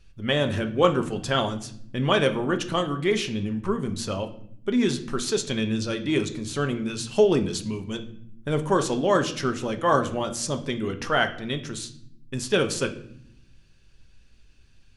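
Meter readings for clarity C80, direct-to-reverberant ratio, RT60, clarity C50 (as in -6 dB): 16.5 dB, 6.5 dB, 0.65 s, 12.5 dB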